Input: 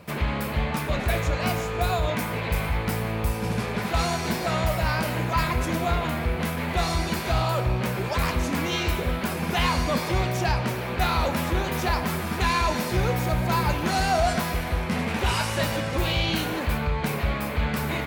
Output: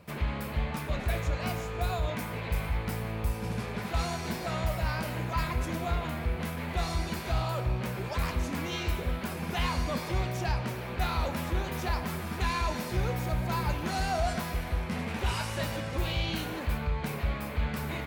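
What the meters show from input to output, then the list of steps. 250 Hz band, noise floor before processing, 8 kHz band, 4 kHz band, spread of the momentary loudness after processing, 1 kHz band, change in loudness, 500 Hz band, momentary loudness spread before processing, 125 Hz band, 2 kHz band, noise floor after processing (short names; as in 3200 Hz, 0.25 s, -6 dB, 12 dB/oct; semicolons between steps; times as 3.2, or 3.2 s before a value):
-7.0 dB, -30 dBFS, -8.0 dB, -8.0 dB, 3 LU, -8.0 dB, -6.5 dB, -8.0 dB, 4 LU, -5.5 dB, -8.0 dB, -37 dBFS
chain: low shelf 76 Hz +7 dB; gain -8 dB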